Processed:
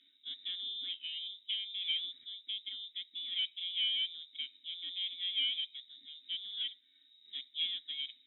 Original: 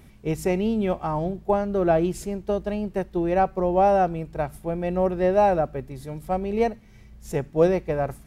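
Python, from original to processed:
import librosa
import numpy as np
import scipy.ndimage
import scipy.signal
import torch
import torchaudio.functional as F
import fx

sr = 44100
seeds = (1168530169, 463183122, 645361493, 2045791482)

y = fx.diode_clip(x, sr, knee_db=-18.5)
y = fx.freq_invert(y, sr, carrier_hz=3800)
y = fx.vowel_filter(y, sr, vowel='i')
y = y * 10.0 ** (-3.5 / 20.0)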